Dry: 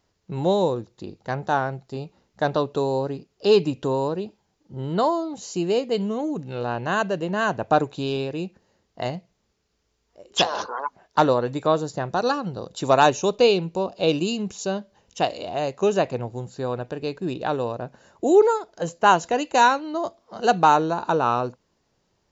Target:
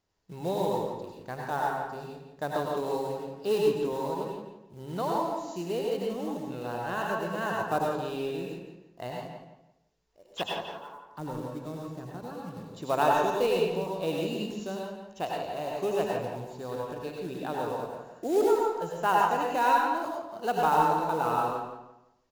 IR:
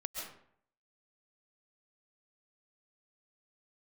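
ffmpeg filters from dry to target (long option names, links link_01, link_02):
-filter_complex "[0:a]acrossover=split=3200[link_01][link_02];[link_02]acompressor=threshold=-41dB:ratio=4:attack=1:release=60[link_03];[link_01][link_03]amix=inputs=2:normalize=0,bandreject=frequency=67.1:width_type=h:width=4,bandreject=frequency=134.2:width_type=h:width=4,bandreject=frequency=201.3:width_type=h:width=4,bandreject=frequency=268.4:width_type=h:width=4,asettb=1/sr,asplit=3[link_04][link_05][link_06];[link_04]atrim=end=10.434[link_07];[link_05]atrim=start=10.43:end=12.71,asetpts=PTS-STARTPTS,afade=type=in:duration=0.004:curve=qsin,afade=type=out:start_time=2.276:duration=0.004:curve=qsin,acrossover=split=300[link_08][link_09];[link_09]acompressor=threshold=-46dB:ratio=2[link_10];[link_08][link_10]amix=inputs=2:normalize=0[link_11];[link_06]atrim=start=12.706[link_12];[link_07][link_11]acrossfade=duration=0.004:curve1=hsin:curve2=qsin[link_13];[link_13][link_12]acrossfade=duration=0.004:curve1=qsin:curve2=hsin,acrusher=bits=5:mode=log:mix=0:aa=0.000001,asplit=2[link_14][link_15];[link_15]adelay=170,lowpass=frequency=3600:poles=1,volume=-7dB,asplit=2[link_16][link_17];[link_17]adelay=170,lowpass=frequency=3600:poles=1,volume=0.29,asplit=2[link_18][link_19];[link_19]adelay=170,lowpass=frequency=3600:poles=1,volume=0.29,asplit=2[link_20][link_21];[link_21]adelay=170,lowpass=frequency=3600:poles=1,volume=0.29[link_22];[link_14][link_16][link_18][link_20][link_22]amix=inputs=5:normalize=0[link_23];[1:a]atrim=start_sample=2205,asetrate=61740,aresample=44100[link_24];[link_23][link_24]afir=irnorm=-1:irlink=0,volume=-4.5dB"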